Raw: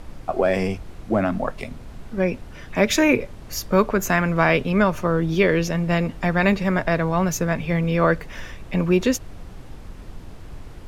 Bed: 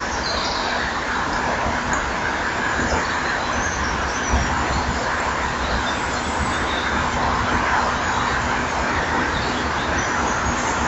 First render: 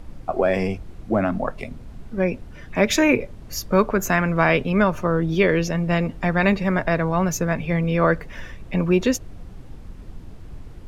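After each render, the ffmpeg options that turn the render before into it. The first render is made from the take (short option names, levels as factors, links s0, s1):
-af "afftdn=nr=6:nf=-40"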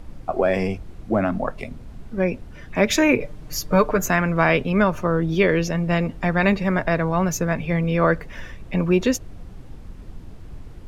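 -filter_complex "[0:a]asettb=1/sr,asplit=3[s0][s1][s2];[s0]atrim=end=3.204[s3];[s1]atrim=start=3.2:end=4.06,asetpts=PTS-STARTPTS,afade=t=in:d=0.004:c=qsin,afade=t=out:st=0.856:d=0.004:c=qsin,aecho=1:1:6.6:0.7,atrim=end_sample=37926[s4];[s2]atrim=start=4.056[s5];[s3][s4]acrossfade=d=0.004:c1=hsin:c2=qsin[s6];[s6][s5]acrossfade=d=0.004:c1=qsin:c2=hsin"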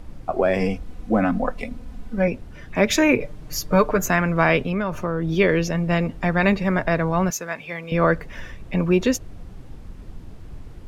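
-filter_complex "[0:a]asettb=1/sr,asplit=3[s0][s1][s2];[s0]atrim=end=0.604[s3];[s1]atrim=start=0.6:end=2.28,asetpts=PTS-STARTPTS,afade=t=in:d=0.004:c=qsin,afade=t=out:st=1.676:d=0.004:c=qsin,aecho=1:1:4:0.65,atrim=end_sample=74088[s4];[s2]atrim=start=2.276[s5];[s3][s4]acrossfade=d=0.004:c1=hsin:c2=qsin[s6];[s6][s5]acrossfade=d=0.004:c1=qsin:c2=hsin,asettb=1/sr,asplit=3[s7][s8][s9];[s7]atrim=end=4.604[s10];[s8]atrim=start=4.6:end=5.28,asetpts=PTS-STARTPTS,afade=t=in:d=0.004:c=qsin,afade=t=out:st=0.676:d=0.004:c=qsin,acompressor=threshold=0.112:ratio=6:attack=3.2:release=140:knee=1:detection=peak[s11];[s9]atrim=start=5.276[s12];[s10][s11]acrossfade=d=0.004:c1=hsin:c2=qsin[s13];[s13][s12]acrossfade=d=0.004:c1=qsin:c2=hsin,asettb=1/sr,asplit=3[s14][s15][s16];[s14]atrim=end=7.304[s17];[s15]atrim=start=7.3:end=7.92,asetpts=PTS-STARTPTS,afade=t=in:d=0.004:c=qsin,afade=t=out:st=0.616:d=0.004:c=qsin,highpass=f=1100:p=1[s18];[s16]atrim=start=7.916[s19];[s17][s18]acrossfade=d=0.004:c1=hsin:c2=qsin[s20];[s20][s19]acrossfade=d=0.004:c1=qsin:c2=hsin"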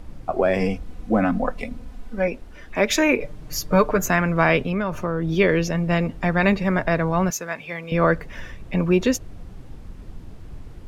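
-filter_complex "[0:a]asettb=1/sr,asplit=3[s0][s1][s2];[s0]atrim=end=1.884[s3];[s1]atrim=start=1.88:end=3.23,asetpts=PTS-STARTPTS,afade=t=in:d=0.004:c=qsin,afade=t=out:st=1.346:d=0.004:c=qsin,equalizer=f=120:t=o:w=1.2:g=-13.5[s4];[s2]atrim=start=3.226[s5];[s3][s4]acrossfade=d=0.004:c1=hsin:c2=qsin[s6];[s6][s5]acrossfade=d=0.004:c1=qsin:c2=hsin"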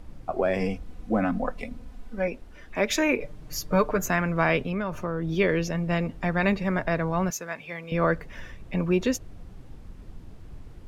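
-af "volume=0.562"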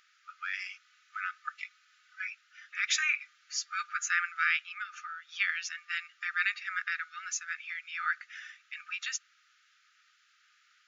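-af "afftfilt=real='re*between(b*sr/4096,1200,7300)':imag='im*between(b*sr/4096,1200,7300)':win_size=4096:overlap=0.75"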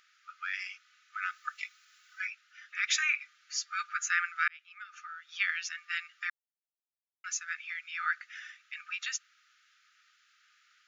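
-filter_complex "[0:a]asplit=3[s0][s1][s2];[s0]afade=t=out:st=1.21:d=0.02[s3];[s1]aemphasis=mode=production:type=50kf,afade=t=in:st=1.21:d=0.02,afade=t=out:st=2.26:d=0.02[s4];[s2]afade=t=in:st=2.26:d=0.02[s5];[s3][s4][s5]amix=inputs=3:normalize=0,asplit=4[s6][s7][s8][s9];[s6]atrim=end=4.48,asetpts=PTS-STARTPTS,afade=t=out:st=4.476:d=0.004:c=hsin[s10];[s7]atrim=start=4.48:end=6.3,asetpts=PTS-STARTPTS,afade=t=in:d=1.21:c=qsin,afade=t=out:st=1.816:d=0.004:c=hsin[s11];[s8]atrim=start=6.3:end=7.24,asetpts=PTS-STARTPTS,volume=0[s12];[s9]atrim=start=7.24,asetpts=PTS-STARTPTS,afade=t=in:d=0.004:c=hsin[s13];[s10][s11][s12][s13]concat=n=4:v=0:a=1"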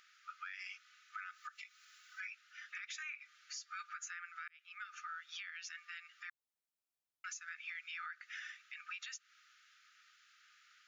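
-af "acompressor=threshold=0.0178:ratio=6,alimiter=level_in=3.98:limit=0.0631:level=0:latency=1:release=215,volume=0.251"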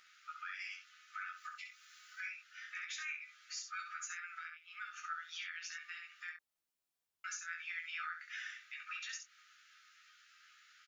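-filter_complex "[0:a]asplit=2[s0][s1];[s1]adelay=24,volume=0.376[s2];[s0][s2]amix=inputs=2:normalize=0,asplit=2[s3][s4];[s4]aecho=0:1:12|67:0.596|0.501[s5];[s3][s5]amix=inputs=2:normalize=0"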